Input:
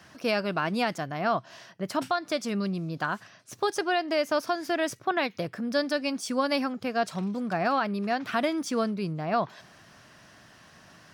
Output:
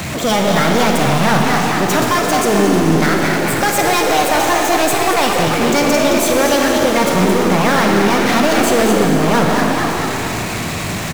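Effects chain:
low-shelf EQ 210 Hz +11.5 dB
on a send: echo with shifted repeats 220 ms, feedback 44%, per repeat +55 Hz, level −9.5 dB
on the sum: formants moved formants +5 semitones
power curve on the samples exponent 0.35
four-comb reverb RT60 3.4 s, DRR 1.5 dB
level +1 dB

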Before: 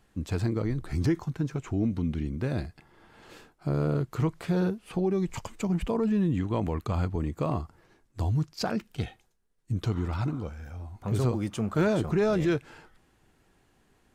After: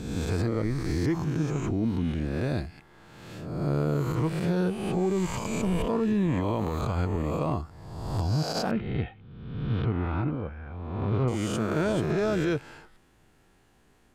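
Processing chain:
peak hold with a rise ahead of every peak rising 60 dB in 1.22 s
0:08.71–0:11.28: low-pass filter 2,800 Hz 24 dB per octave
brickwall limiter −18.5 dBFS, peak gain reduction 7.5 dB

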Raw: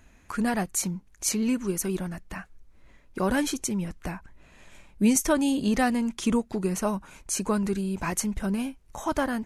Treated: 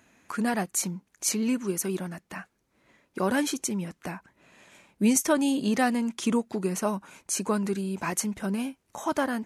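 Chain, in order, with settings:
high-pass filter 170 Hz 12 dB per octave

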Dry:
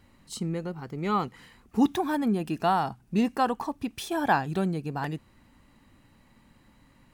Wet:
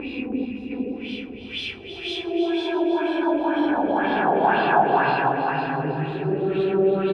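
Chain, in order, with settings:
notch filter 1,800 Hz, Q 23
extreme stretch with random phases 8.9×, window 0.25 s, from 0:03.80
graphic EQ with 15 bands 400 Hz +12 dB, 2,500 Hz +7 dB, 6,300 Hz −6 dB
in parallel at +1 dB: brickwall limiter −19 dBFS, peak gain reduction 11 dB
on the sum: auto-filter low-pass sine 2 Hz 530–4,000 Hz
gain on a spectral selection 0:00.45–0:00.71, 240–5,000 Hz −13 dB
on a send: repeating echo 321 ms, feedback 42%, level −9.5 dB
on the sum: level −5.5 dB

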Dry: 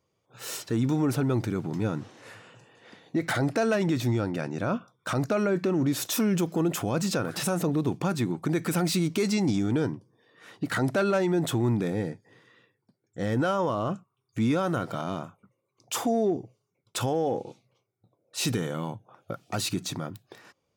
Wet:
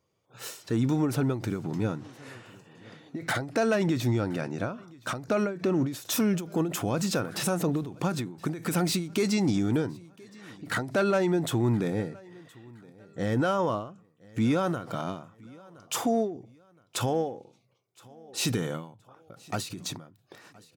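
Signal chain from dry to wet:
repeating echo 1,019 ms, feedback 34%, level −24 dB
every ending faded ahead of time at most 110 dB per second

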